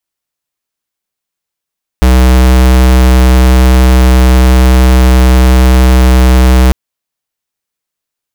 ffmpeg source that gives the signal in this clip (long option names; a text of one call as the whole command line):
ffmpeg -f lavfi -i "aevalsrc='0.596*(2*lt(mod(63.5*t,1),0.5)-1)':duration=4.7:sample_rate=44100" out.wav